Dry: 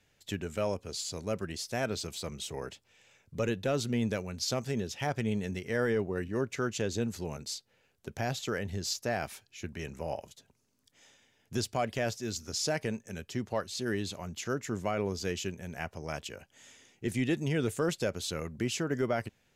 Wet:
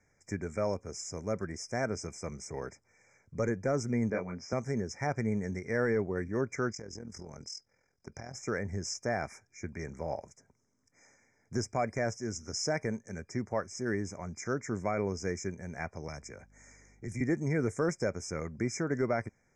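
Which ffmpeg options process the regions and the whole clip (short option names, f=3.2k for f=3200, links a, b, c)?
-filter_complex "[0:a]asettb=1/sr,asplit=3[a][b][c];[a]atrim=end=4.104[d];[b]atrim=start=4.1:end=4.53,asetpts=PTS-STARTPTS,afade=t=in:d=0.004:c=qsin,afade=t=out:st=0.426:d=0.004:c=qsin,highpass=160,lowpass=2.8k,asplit=2[e][f];[f]adelay=23,volume=-3dB[g];[e][g]amix=inputs=2:normalize=0,atrim=end_sample=18963[h];[c]atrim=start=4.526[i];[d][h]acrossfade=d=0.004:c1=hsin:c2=qsin[j];[j][i]acrossfade=d=0.004:c1=qsin:c2=hsin,asettb=1/sr,asplit=3[k][l][m];[k]atrim=end=6.724[n];[l]atrim=start=6.72:end=8.35,asetpts=PTS-STARTPTS,afade=t=in:d=0.004:c=qsin,afade=t=out:st=1.626:d=0.004:c=qsin,acompressor=threshold=-37dB:ratio=6:attack=3.2:release=140:knee=1:detection=peak,equalizer=f=4.9k:w=3.9:g=14.5,tremolo=f=42:d=0.71[o];[m]atrim=start=8.346[p];[n][o]acrossfade=d=0.004:c1=hsin:c2=qsin[q];[q][p]acrossfade=d=0.004:c1=qsin:c2=hsin,asettb=1/sr,asplit=3[r][s][t];[r]atrim=end=16.084[u];[s]atrim=start=16.08:end=17.21,asetpts=PTS-STARTPTS,afade=t=in:d=0.004:c=qsin,afade=t=out:st=1.126:d=0.004:c=qsin,acrossover=split=150|3000[v][w][x];[w]acompressor=threshold=-42dB:ratio=4:attack=3.2:release=140:knee=2.83:detection=peak[y];[v][y][x]amix=inputs=3:normalize=0,aeval=exprs='val(0)+0.000891*(sin(2*PI*50*n/s)+sin(2*PI*2*50*n/s)/2+sin(2*PI*3*50*n/s)/3+sin(2*PI*4*50*n/s)/4+sin(2*PI*5*50*n/s)/5)':c=same[z];[t]atrim=start=17.206[aa];[u][z]acrossfade=d=0.004:c1=hsin:c2=qsin[ab];[ab][aa]acrossfade=d=0.004:c1=qsin:c2=hsin,lowpass=f=7.3k:w=0.5412,lowpass=f=7.3k:w=1.3066,afftfilt=real='re*(1-between(b*sr/4096,2400,5000))':imag='im*(1-between(b*sr/4096,2400,5000))':win_size=4096:overlap=0.75"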